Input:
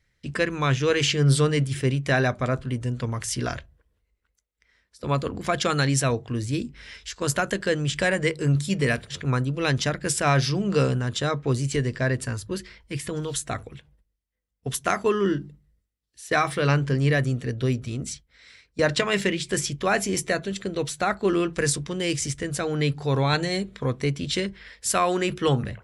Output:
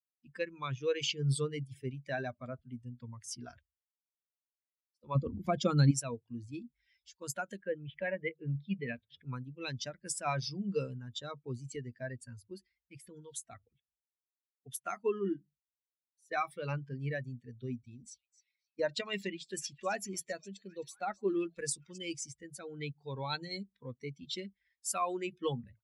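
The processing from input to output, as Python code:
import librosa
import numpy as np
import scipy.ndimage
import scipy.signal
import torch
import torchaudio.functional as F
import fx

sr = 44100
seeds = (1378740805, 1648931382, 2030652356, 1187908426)

y = fx.low_shelf(x, sr, hz=480.0, db=10.5, at=(5.15, 5.91))
y = fx.lowpass(y, sr, hz=fx.line((7.6, 2700.0), (9.24, 4500.0)), slope=24, at=(7.6, 9.24), fade=0.02)
y = fx.echo_stepped(y, sr, ms=264, hz=5600.0, octaves=-0.7, feedback_pct=70, wet_db=-7.5, at=(17.56, 21.98))
y = fx.bin_expand(y, sr, power=2.0)
y = scipy.signal.sosfilt(scipy.signal.butter(2, 110.0, 'highpass', fs=sr, output='sos'), y)
y = fx.dynamic_eq(y, sr, hz=1700.0, q=3.1, threshold_db=-46.0, ratio=4.0, max_db=-5)
y = y * 10.0 ** (-6.5 / 20.0)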